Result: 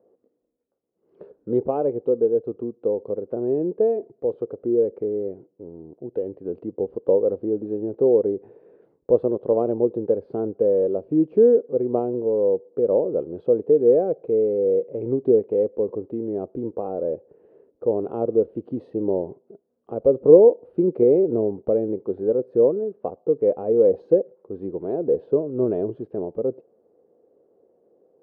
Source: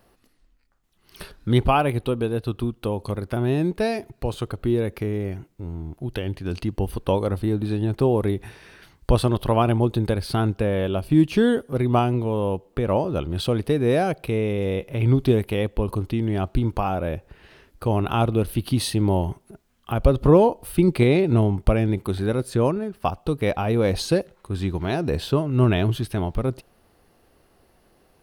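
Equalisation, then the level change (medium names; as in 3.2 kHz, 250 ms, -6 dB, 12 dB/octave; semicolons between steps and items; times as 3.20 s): high-pass 240 Hz 12 dB/octave; resonant low-pass 480 Hz, resonance Q 4.9; -5.0 dB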